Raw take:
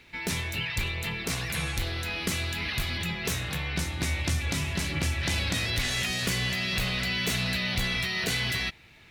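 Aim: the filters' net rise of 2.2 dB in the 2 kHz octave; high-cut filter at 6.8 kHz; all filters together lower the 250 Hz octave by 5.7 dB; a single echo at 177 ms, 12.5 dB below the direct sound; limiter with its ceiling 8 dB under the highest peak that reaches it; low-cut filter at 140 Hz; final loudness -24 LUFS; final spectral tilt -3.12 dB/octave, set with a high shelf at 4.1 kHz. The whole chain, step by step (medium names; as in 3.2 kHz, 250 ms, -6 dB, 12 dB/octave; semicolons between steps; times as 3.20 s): high-pass 140 Hz; low-pass 6.8 kHz; peaking EQ 250 Hz -7.5 dB; peaking EQ 2 kHz +4.5 dB; treble shelf 4.1 kHz -7.5 dB; peak limiter -24 dBFS; delay 177 ms -12.5 dB; trim +7.5 dB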